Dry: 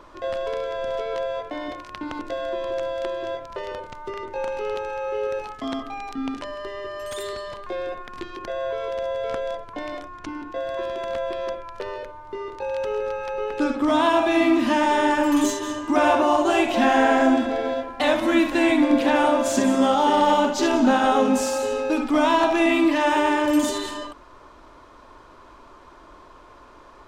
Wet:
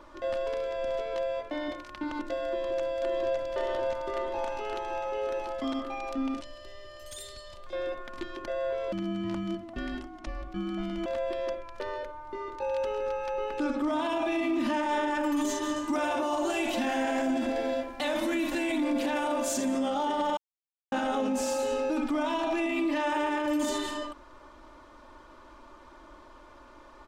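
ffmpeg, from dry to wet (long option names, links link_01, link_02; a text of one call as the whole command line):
ffmpeg -i in.wav -filter_complex "[0:a]asplit=2[link_01][link_02];[link_02]afade=type=in:start_time=2.46:duration=0.01,afade=type=out:start_time=3.48:duration=0.01,aecho=0:1:560|1120|1680|2240|2800|3360|3920|4480|5040|5600|6160|6720:0.749894|0.562421|0.421815|0.316362|0.237271|0.177953|0.133465|0.100099|0.0750741|0.0563056|0.0422292|0.0316719[link_03];[link_01][link_03]amix=inputs=2:normalize=0,asettb=1/sr,asplit=3[link_04][link_05][link_06];[link_04]atrim=end=6.404[link_07];[link_05]atrim=start=6.4:end=7.73,asetpts=PTS-STARTPTS,afade=type=in:duration=0.004:curve=qsin,afade=type=out:start_time=1.326:duration=0.004:curve=qsin,acrossover=split=160|3000[link_08][link_09][link_10];[link_09]acompressor=threshold=-45dB:ratio=6:attack=3.2:release=140:knee=2.83:detection=peak[link_11];[link_08][link_11][link_10]amix=inputs=3:normalize=0[link_12];[link_06]atrim=start=7.726[link_13];[link_07][link_12]acrossfade=duration=0.004:curve1=hsin:curve2=qsin[link_14];[link_14][link_13]acrossfade=duration=0.004:curve1=qsin:curve2=hsin,asettb=1/sr,asplit=3[link_15][link_16][link_17];[link_15]atrim=end=8.924[link_18];[link_16]atrim=start=8.92:end=11.06,asetpts=PTS-STARTPTS,afade=type=in:duration=0.004:curve=qsin,afade=type=out:start_time=2.136:duration=0.004:curve=qsin,afreqshift=-340[link_19];[link_17]atrim=start=11.056[link_20];[link_18][link_19]acrossfade=duration=0.004:curve1=hsin:curve2=qsin[link_21];[link_21][link_20]acrossfade=duration=0.004:curve1=qsin:curve2=hsin,asettb=1/sr,asplit=3[link_22][link_23][link_24];[link_22]atrim=end=15.764[link_25];[link_23]atrim=start=15.76:end=19.65,asetpts=PTS-STARTPTS,afade=type=in:duration=0.004:curve=qsin,afade=type=out:start_time=3.886:duration=0.004:curve=qsin,aemphasis=mode=production:type=cd[link_26];[link_24]atrim=start=19.646[link_27];[link_25][link_26]acrossfade=duration=0.004:curve1=hsin:curve2=qsin[link_28];[link_28][link_27]acrossfade=duration=0.004:curve1=qsin:curve2=hsin,asplit=3[link_29][link_30][link_31];[link_29]atrim=end=20.37,asetpts=PTS-STARTPTS,afade=type=out:start_time=20.366:duration=0.004:curve=hsin[link_32];[link_30]atrim=start=20.37:end=20.92,asetpts=PTS-STARTPTS,volume=0[link_33];[link_31]atrim=start=20.92,asetpts=PTS-STARTPTS,afade=type=in:duration=0.004:curve=hsin[link_34];[link_32][link_33][link_34]concat=n=3:v=0:a=1,aecho=1:1:3.4:0.49,alimiter=limit=-16.5dB:level=0:latency=1:release=30,volume=-5dB" out.wav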